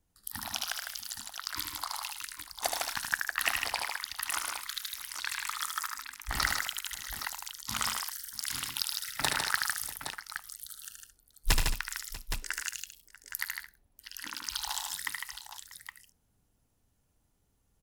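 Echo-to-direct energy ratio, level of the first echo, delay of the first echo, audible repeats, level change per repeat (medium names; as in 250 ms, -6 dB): -0.5 dB, -5.0 dB, 75 ms, 6, no regular repeats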